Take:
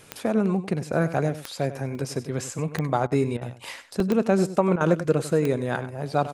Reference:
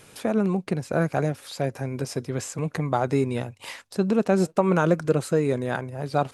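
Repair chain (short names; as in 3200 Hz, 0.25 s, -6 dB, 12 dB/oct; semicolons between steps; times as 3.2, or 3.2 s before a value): de-click; interpolate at 1.95/4, 2.1 ms; interpolate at 3.07/3.37/4.76, 45 ms; inverse comb 97 ms -13.5 dB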